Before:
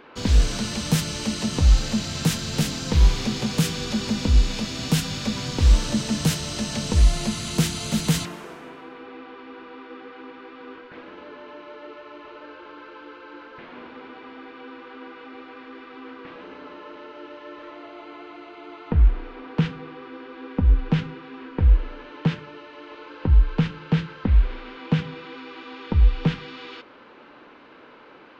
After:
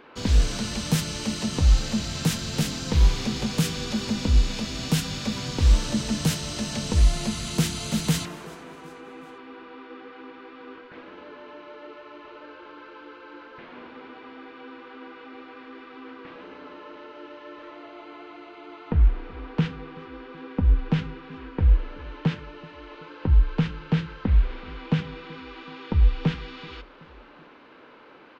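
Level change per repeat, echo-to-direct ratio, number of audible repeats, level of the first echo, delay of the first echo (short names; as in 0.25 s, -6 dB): -5.5 dB, -21.5 dB, 3, -23.0 dB, 0.377 s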